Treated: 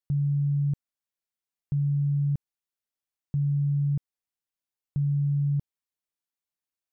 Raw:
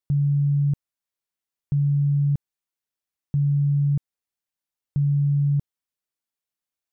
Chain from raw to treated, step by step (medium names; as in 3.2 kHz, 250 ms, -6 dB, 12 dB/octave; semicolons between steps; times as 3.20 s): trim -4.5 dB